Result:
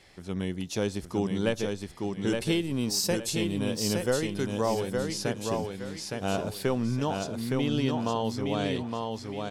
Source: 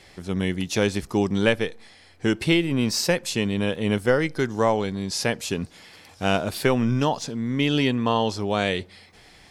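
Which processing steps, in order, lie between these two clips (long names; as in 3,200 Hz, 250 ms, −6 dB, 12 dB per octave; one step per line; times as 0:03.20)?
0:02.27–0:04.61: high-shelf EQ 4,900 Hz +8 dB
repeating echo 865 ms, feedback 30%, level −4 dB
dynamic equaliser 2,100 Hz, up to −7 dB, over −39 dBFS, Q 1.2
level −6.5 dB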